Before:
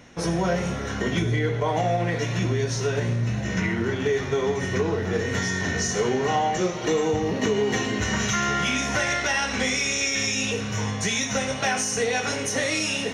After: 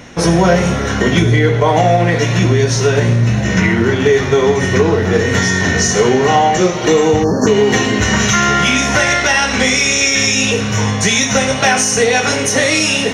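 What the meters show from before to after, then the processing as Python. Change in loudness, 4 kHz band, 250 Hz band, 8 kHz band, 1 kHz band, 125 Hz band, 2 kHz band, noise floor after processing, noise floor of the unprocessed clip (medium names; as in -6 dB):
+12.0 dB, +11.5 dB, +12.0 dB, +11.5 dB, +12.0 dB, +12.0 dB, +11.5 dB, -18 dBFS, -30 dBFS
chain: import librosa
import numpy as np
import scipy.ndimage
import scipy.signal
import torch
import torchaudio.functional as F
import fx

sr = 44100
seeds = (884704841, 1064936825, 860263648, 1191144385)

p1 = fx.spec_erase(x, sr, start_s=7.24, length_s=0.23, low_hz=1800.0, high_hz=4200.0)
p2 = fx.rider(p1, sr, range_db=10, speed_s=2.0)
p3 = p1 + (p2 * librosa.db_to_amplitude(-0.5))
y = p3 * librosa.db_to_amplitude(6.0)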